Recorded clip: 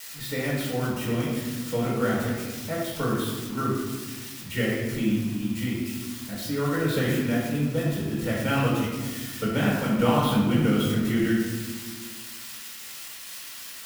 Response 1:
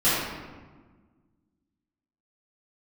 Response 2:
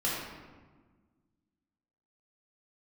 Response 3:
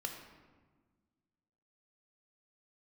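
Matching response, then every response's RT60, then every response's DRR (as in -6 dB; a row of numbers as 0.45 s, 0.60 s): 2; 1.4 s, 1.4 s, 1.5 s; -13.5 dB, -6.0 dB, 3.5 dB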